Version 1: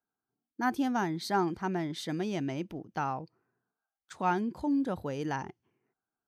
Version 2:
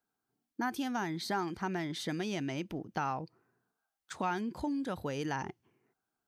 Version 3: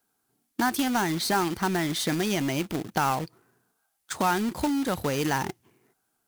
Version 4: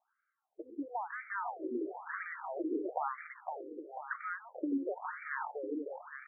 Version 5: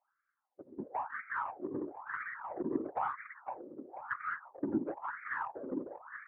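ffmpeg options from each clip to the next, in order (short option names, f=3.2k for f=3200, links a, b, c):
-filter_complex "[0:a]acrossover=split=1400[a][b];[a]acompressor=threshold=-37dB:ratio=6[c];[b]alimiter=level_in=11.5dB:limit=-24dB:level=0:latency=1:release=61,volume=-11.5dB[d];[c][d]amix=inputs=2:normalize=0,volume=4dB"
-af "equalizer=f=11k:t=o:w=1.1:g=9,acrusher=bits=2:mode=log:mix=0:aa=0.000001,volume=8.5dB"
-filter_complex "[0:a]acrossover=split=200|2600[a][b][c];[a]acompressor=threshold=-40dB:ratio=4[d];[b]acompressor=threshold=-34dB:ratio=4[e];[c]acompressor=threshold=-37dB:ratio=4[f];[d][e][f]amix=inputs=3:normalize=0,asplit=2[g][h];[h]aecho=0:1:510|816|999.6|1110|1176:0.631|0.398|0.251|0.158|0.1[i];[g][i]amix=inputs=2:normalize=0,afftfilt=real='re*between(b*sr/1024,360*pow(1700/360,0.5+0.5*sin(2*PI*1*pts/sr))/1.41,360*pow(1700/360,0.5+0.5*sin(2*PI*1*pts/sr))*1.41)':imag='im*between(b*sr/1024,360*pow(1700/360,0.5+0.5*sin(2*PI*1*pts/sr))/1.41,360*pow(1700/360,0.5+0.5*sin(2*PI*1*pts/sr))*1.41)':win_size=1024:overlap=0.75,volume=1.5dB"
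-af "aeval=exprs='0.0794*(cos(1*acos(clip(val(0)/0.0794,-1,1)))-cos(1*PI/2))+0.00631*(cos(2*acos(clip(val(0)/0.0794,-1,1)))-cos(2*PI/2))+0.000447*(cos(6*acos(clip(val(0)/0.0794,-1,1)))-cos(6*PI/2))+0.00316*(cos(7*acos(clip(val(0)/0.0794,-1,1)))-cos(7*PI/2))':c=same,afftfilt=real='hypot(re,im)*cos(2*PI*random(0))':imag='hypot(re,im)*sin(2*PI*random(1))':win_size=512:overlap=0.75,highpass=120,equalizer=f=200:t=q:w=4:g=-7,equalizer=f=450:t=q:w=4:g=-8,equalizer=f=670:t=q:w=4:g=-7,lowpass=f=2.1k:w=0.5412,lowpass=f=2.1k:w=1.3066,volume=9.5dB"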